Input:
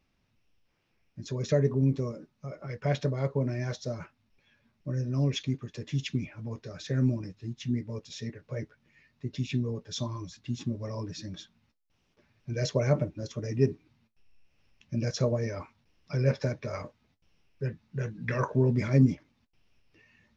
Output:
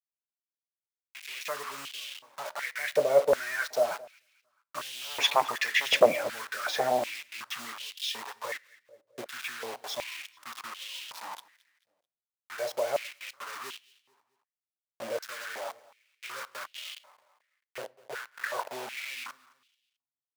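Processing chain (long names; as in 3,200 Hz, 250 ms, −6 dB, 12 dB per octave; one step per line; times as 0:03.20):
source passing by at 0:05.70, 8 m/s, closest 3.1 metres
high-shelf EQ 4,500 Hz −12 dB
in parallel at +1 dB: downward compressor 8 to 1, threshold −54 dBFS, peak gain reduction 27 dB
on the sum: sine wavefolder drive 6 dB, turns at −24.5 dBFS
bit reduction 8 bits
repeating echo 219 ms, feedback 38%, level −22 dB
on a send at −20 dB: convolution reverb RT60 0.60 s, pre-delay 8 ms
on the sum: high-pass on a step sequencer 2.7 Hz 570–3,000 Hz
level +8.5 dB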